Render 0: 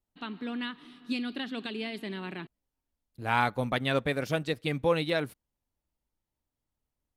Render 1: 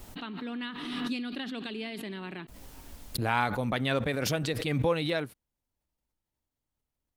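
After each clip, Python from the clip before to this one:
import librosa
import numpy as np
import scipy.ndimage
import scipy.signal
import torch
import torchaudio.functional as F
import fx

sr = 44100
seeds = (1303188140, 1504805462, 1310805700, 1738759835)

y = fx.pre_swell(x, sr, db_per_s=28.0)
y = y * 10.0 ** (-2.0 / 20.0)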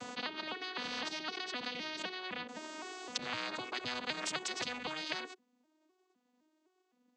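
y = fx.vocoder_arp(x, sr, chord='major triad', root=59, every_ms=256)
y = fx.spectral_comp(y, sr, ratio=10.0)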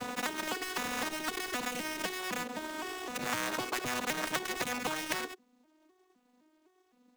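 y = fx.dead_time(x, sr, dead_ms=0.12)
y = y * 10.0 ** (7.5 / 20.0)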